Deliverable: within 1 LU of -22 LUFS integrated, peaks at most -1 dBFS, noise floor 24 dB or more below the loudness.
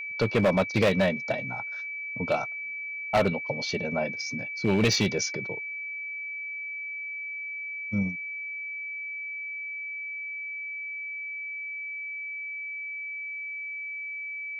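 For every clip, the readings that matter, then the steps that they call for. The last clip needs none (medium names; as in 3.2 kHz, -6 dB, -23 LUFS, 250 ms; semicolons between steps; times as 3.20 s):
clipped samples 0.6%; clipping level -17.0 dBFS; steady tone 2.3 kHz; tone level -33 dBFS; loudness -29.5 LUFS; peak level -17.0 dBFS; loudness target -22.0 LUFS
-> clip repair -17 dBFS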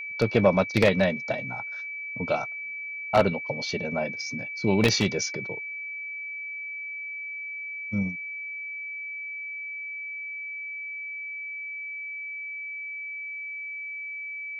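clipped samples 0.0%; steady tone 2.3 kHz; tone level -33 dBFS
-> band-stop 2.3 kHz, Q 30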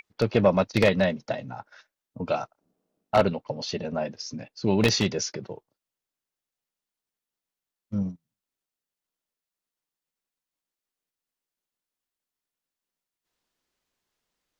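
steady tone not found; loudness -26.0 LUFS; peak level -8.0 dBFS; loudness target -22.0 LUFS
-> trim +4 dB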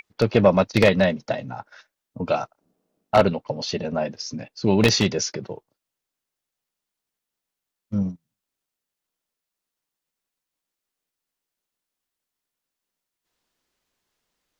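loudness -22.0 LUFS; peak level -4.0 dBFS; noise floor -86 dBFS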